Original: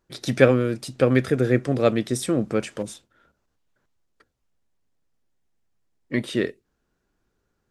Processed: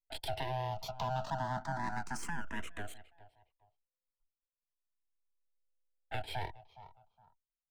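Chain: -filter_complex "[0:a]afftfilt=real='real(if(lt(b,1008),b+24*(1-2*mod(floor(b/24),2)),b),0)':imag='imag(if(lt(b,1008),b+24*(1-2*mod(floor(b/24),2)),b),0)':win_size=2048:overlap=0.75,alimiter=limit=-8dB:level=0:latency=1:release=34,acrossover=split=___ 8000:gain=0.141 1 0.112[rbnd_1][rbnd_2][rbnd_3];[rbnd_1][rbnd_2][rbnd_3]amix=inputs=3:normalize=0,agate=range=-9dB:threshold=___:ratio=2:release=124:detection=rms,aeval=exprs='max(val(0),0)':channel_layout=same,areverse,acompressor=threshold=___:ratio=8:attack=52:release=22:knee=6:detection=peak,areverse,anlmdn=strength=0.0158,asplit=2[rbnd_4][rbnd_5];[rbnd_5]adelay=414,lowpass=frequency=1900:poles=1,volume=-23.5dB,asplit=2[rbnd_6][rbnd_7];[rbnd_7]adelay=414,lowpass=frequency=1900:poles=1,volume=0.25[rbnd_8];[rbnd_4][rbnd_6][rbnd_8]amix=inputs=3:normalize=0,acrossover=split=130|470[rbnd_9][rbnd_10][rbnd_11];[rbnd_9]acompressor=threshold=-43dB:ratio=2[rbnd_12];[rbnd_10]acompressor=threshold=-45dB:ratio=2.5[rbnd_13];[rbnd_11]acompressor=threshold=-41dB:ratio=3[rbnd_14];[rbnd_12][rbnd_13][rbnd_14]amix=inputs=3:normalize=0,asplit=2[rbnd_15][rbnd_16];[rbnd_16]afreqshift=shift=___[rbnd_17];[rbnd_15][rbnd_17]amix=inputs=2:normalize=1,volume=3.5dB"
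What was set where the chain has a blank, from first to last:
190, -47dB, -38dB, 0.33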